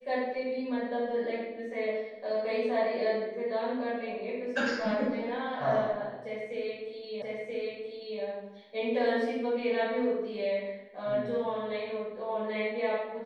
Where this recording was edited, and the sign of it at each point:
7.22 s: repeat of the last 0.98 s

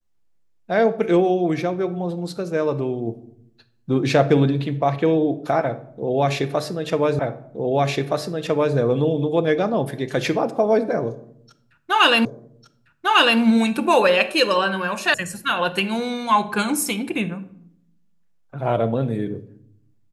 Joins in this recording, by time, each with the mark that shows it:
7.19 s: repeat of the last 1.57 s
12.25 s: repeat of the last 1.15 s
15.14 s: sound stops dead

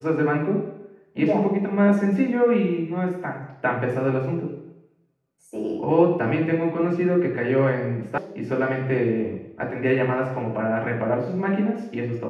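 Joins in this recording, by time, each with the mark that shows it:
8.18 s: sound stops dead

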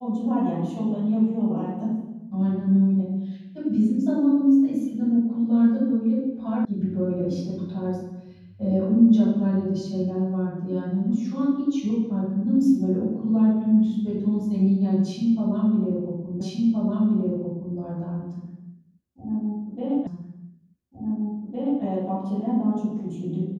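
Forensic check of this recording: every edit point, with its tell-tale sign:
6.65 s: sound stops dead
16.41 s: repeat of the last 1.37 s
20.07 s: repeat of the last 1.76 s

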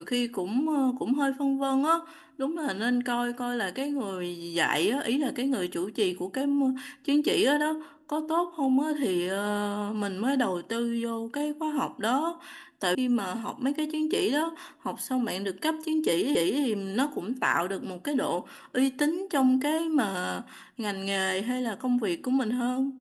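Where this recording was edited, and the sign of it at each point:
12.95 s: sound stops dead
16.35 s: repeat of the last 0.28 s

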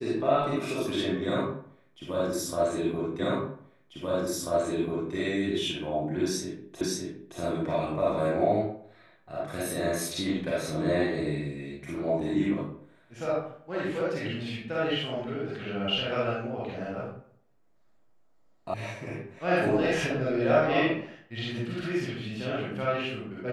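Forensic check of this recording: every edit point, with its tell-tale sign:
3.19 s: repeat of the last 1.94 s
6.81 s: repeat of the last 0.57 s
18.74 s: sound stops dead

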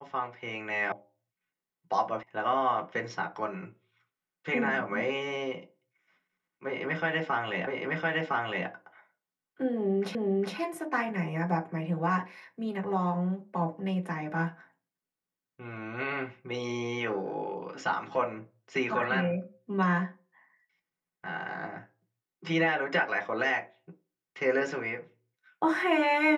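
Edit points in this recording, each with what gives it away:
0.92 s: sound stops dead
2.23 s: sound stops dead
7.67 s: repeat of the last 1.01 s
10.15 s: repeat of the last 0.41 s

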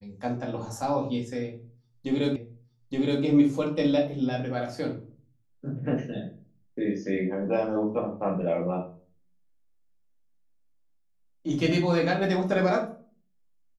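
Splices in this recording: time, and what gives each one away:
2.36 s: repeat of the last 0.87 s

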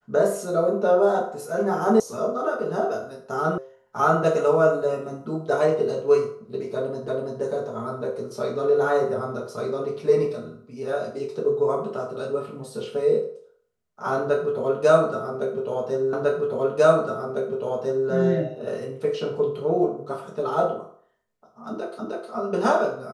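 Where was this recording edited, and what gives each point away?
2.00 s: sound stops dead
3.58 s: sound stops dead
7.08 s: repeat of the last 0.33 s
16.13 s: repeat of the last 1.95 s
21.99 s: repeat of the last 0.31 s

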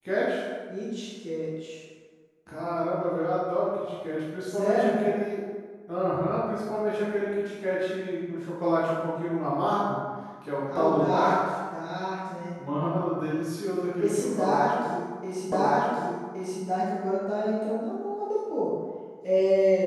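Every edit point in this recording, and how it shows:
15.52 s: repeat of the last 1.12 s

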